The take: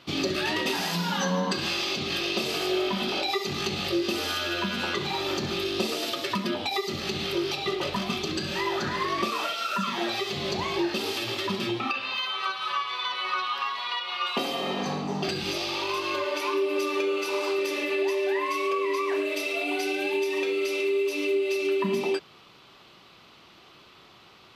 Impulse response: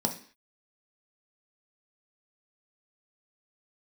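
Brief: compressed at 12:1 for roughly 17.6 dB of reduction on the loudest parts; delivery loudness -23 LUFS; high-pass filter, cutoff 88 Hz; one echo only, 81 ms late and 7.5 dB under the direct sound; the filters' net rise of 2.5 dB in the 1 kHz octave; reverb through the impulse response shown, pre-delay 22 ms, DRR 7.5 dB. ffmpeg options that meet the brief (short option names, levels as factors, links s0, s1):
-filter_complex "[0:a]highpass=88,equalizer=f=1000:t=o:g=3,acompressor=threshold=0.01:ratio=12,aecho=1:1:81:0.422,asplit=2[s0][s1];[1:a]atrim=start_sample=2205,adelay=22[s2];[s1][s2]afir=irnorm=-1:irlink=0,volume=0.188[s3];[s0][s3]amix=inputs=2:normalize=0,volume=7.5"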